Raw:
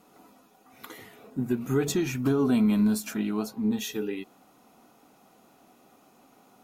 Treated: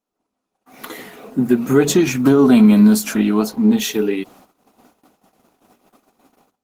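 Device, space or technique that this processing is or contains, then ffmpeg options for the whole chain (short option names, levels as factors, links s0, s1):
video call: -af "highpass=f=150:w=0.5412,highpass=f=150:w=1.3066,dynaudnorm=f=270:g=3:m=2.51,agate=range=0.0355:threshold=0.00398:ratio=16:detection=peak,volume=1.78" -ar 48000 -c:a libopus -b:a 16k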